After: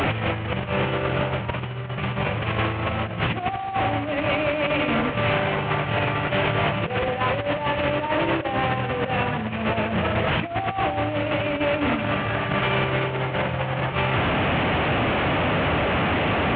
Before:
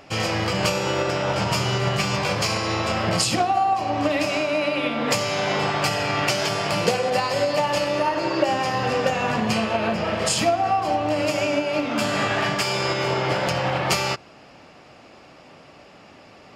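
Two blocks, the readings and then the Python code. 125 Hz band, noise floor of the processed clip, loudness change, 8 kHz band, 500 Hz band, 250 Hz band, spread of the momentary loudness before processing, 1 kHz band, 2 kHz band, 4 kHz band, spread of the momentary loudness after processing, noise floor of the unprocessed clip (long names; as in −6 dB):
+3.5 dB, −30 dBFS, −1.0 dB, below −35 dB, −1.5 dB, +1.0 dB, 3 LU, −1.5 dB, +1.5 dB, −4.0 dB, 4 LU, −48 dBFS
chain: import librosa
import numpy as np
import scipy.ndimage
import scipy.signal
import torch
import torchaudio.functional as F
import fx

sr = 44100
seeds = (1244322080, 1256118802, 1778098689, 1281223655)

y = fx.delta_mod(x, sr, bps=16000, step_db=-19.0)
y = scipy.signal.sosfilt(scipy.signal.butter(2, 47.0, 'highpass', fs=sr, output='sos'), y)
y = fx.peak_eq(y, sr, hz=89.0, db=9.0, octaves=1.7)
y = fx.over_compress(y, sr, threshold_db=-23.0, ratio=-0.5)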